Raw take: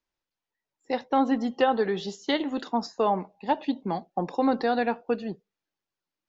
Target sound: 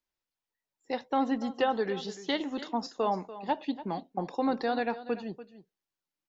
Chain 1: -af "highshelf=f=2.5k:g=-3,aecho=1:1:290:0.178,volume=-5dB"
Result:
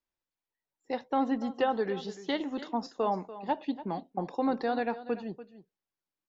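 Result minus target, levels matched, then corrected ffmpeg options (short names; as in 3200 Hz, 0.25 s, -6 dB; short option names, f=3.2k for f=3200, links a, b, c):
4000 Hz band -3.5 dB
-af "highshelf=f=2.5k:g=3,aecho=1:1:290:0.178,volume=-5dB"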